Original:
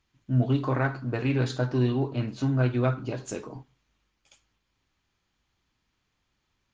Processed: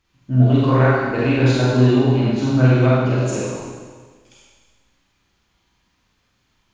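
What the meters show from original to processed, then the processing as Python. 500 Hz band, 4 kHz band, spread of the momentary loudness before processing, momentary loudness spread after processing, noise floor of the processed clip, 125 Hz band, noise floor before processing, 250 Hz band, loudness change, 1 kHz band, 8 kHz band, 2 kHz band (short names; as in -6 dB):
+11.5 dB, +11.0 dB, 12 LU, 9 LU, -66 dBFS, +10.5 dB, -77 dBFS, +11.0 dB, +10.5 dB, +11.0 dB, n/a, +10.5 dB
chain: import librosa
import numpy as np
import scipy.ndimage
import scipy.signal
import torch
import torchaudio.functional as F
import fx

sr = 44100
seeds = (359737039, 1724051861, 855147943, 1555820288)

y = fx.rev_schroeder(x, sr, rt60_s=1.5, comb_ms=32, drr_db=-6.0)
y = y * 10.0 ** (4.0 / 20.0)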